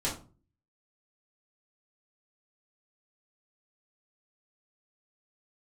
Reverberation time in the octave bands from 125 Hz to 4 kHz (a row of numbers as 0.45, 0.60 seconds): 0.60, 0.55, 0.40, 0.35, 0.25, 0.25 seconds